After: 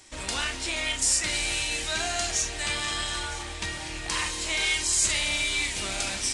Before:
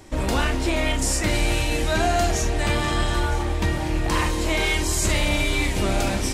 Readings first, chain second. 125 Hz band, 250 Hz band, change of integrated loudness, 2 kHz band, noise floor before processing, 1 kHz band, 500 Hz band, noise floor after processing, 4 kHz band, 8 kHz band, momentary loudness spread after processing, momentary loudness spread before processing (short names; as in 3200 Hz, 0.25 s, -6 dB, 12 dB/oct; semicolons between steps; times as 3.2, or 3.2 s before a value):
-16.5 dB, -15.5 dB, -3.5 dB, -2.5 dB, -25 dBFS, -9.5 dB, -13.0 dB, -36 dBFS, +1.0 dB, +2.5 dB, 9 LU, 3 LU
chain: tilt shelf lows -10 dB, about 1300 Hz; downsampling 22050 Hz; gain -6.5 dB